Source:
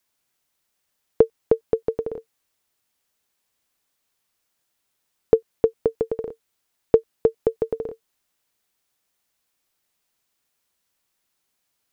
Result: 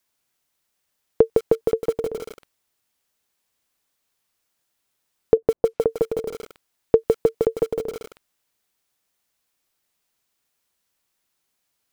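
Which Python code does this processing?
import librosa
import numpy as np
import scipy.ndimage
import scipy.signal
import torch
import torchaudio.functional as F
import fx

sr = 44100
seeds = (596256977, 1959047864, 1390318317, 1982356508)

y = fx.env_lowpass(x, sr, base_hz=520.0, full_db=-17.0, at=(5.37, 5.87))
y = fx.echo_crushed(y, sr, ms=158, feedback_pct=35, bits=6, wet_db=-3.5)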